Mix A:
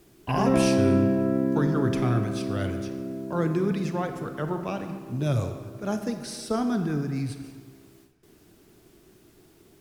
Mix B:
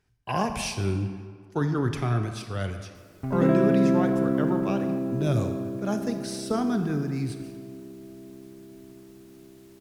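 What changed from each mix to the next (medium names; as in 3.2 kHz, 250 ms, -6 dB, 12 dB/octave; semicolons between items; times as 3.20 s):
background: entry +2.95 s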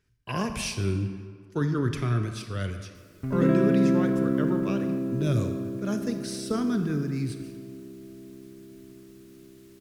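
master: add peaking EQ 780 Hz -13.5 dB 0.48 oct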